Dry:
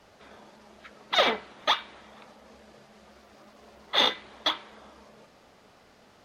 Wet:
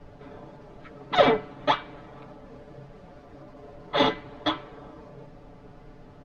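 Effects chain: tilt -4.5 dB/oct; comb 6.9 ms, depth 98%

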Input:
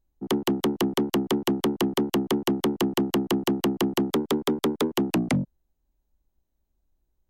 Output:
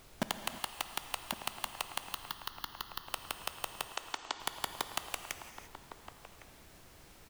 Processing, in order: Wiener smoothing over 25 samples; high shelf 2900 Hz -7 dB; limiter -24.5 dBFS, peak gain reduction 5.5 dB; compressor 8:1, threshold -41 dBFS, peak gain reduction 14 dB; requantised 6-bit, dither none; added noise pink -66 dBFS; 2.14–3.08 fixed phaser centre 2400 Hz, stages 6; 3.87–4.4 brick-wall FIR band-pass 240–8200 Hz; outdoor echo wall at 190 m, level -10 dB; non-linear reverb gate 0.37 s flat, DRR 8 dB; gain +8.5 dB

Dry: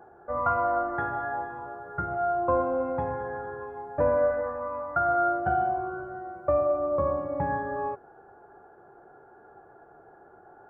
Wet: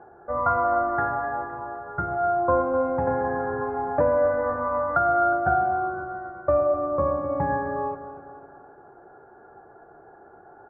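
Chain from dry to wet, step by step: LPF 2200 Hz 24 dB/oct; feedback echo 0.256 s, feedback 47%, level -12 dB; 3.07–5.33 three-band squash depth 70%; gain +3 dB

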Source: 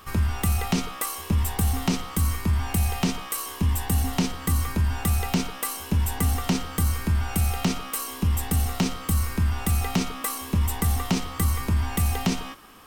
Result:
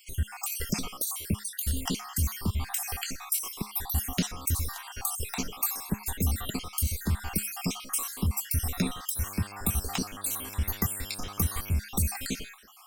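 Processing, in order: random spectral dropouts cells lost 58%; high shelf 4200 Hz +9 dB; resonator 210 Hz, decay 0.27 s, harmonics all, mix 40%; 9.15–11.78 buzz 100 Hz, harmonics 17, -49 dBFS -3 dB/oct

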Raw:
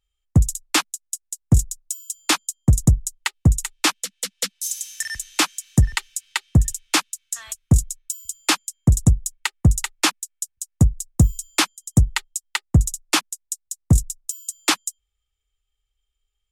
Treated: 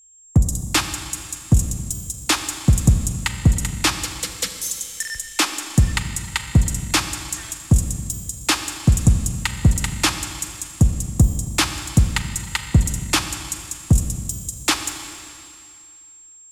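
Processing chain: whine 7500 Hz -49 dBFS; Schroeder reverb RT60 2.4 s, combs from 30 ms, DRR 7 dB

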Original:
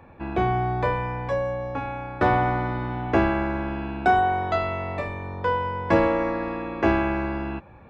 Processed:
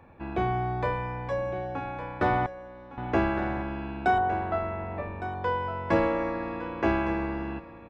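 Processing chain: 2.46–2.98 level quantiser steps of 22 dB; 4.18–5.35 LPF 1700 Hz 12 dB/oct; echo 1.16 s -12.5 dB; gain -4.5 dB

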